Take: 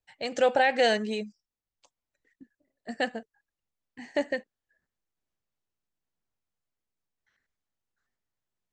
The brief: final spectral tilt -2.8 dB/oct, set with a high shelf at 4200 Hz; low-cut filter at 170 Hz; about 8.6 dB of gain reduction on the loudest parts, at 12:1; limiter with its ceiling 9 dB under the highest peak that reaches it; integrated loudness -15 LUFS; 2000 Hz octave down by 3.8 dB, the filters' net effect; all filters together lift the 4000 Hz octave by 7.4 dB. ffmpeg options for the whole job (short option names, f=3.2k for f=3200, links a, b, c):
-af "highpass=170,equalizer=f=2k:t=o:g=-8,equalizer=f=4k:t=o:g=8,highshelf=f=4.2k:g=8.5,acompressor=threshold=-26dB:ratio=12,volume=22dB,alimiter=limit=-3dB:level=0:latency=1"